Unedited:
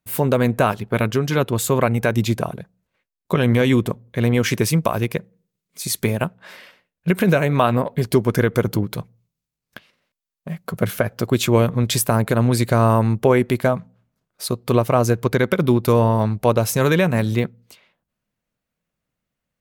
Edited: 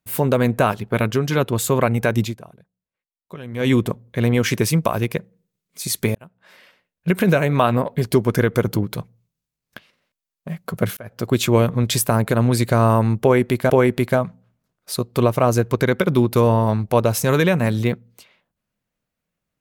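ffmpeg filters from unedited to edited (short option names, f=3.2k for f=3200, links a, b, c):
-filter_complex "[0:a]asplit=6[a][b][c][d][e][f];[a]atrim=end=2.4,asetpts=PTS-STARTPTS,afade=t=out:st=2.23:d=0.17:c=qua:silence=0.141254[g];[b]atrim=start=2.4:end=3.5,asetpts=PTS-STARTPTS,volume=-17dB[h];[c]atrim=start=3.5:end=6.15,asetpts=PTS-STARTPTS,afade=t=in:d=0.17:c=qua:silence=0.141254,afade=t=out:st=2.646:d=0.004:c=hsin[i];[d]atrim=start=6.15:end=10.97,asetpts=PTS-STARTPTS,afade=t=in:d=1,afade=t=out:st=4.816:d=0.004:c=hsin[j];[e]atrim=start=10.97:end=13.702,asetpts=PTS-STARTPTS,afade=t=in:d=0.34[k];[f]atrim=start=13.218[l];[g][h][i][j][k]concat=n=5:v=0:a=1[m];[m][l]acrossfade=d=0.004:c1=hsin:c2=hsin"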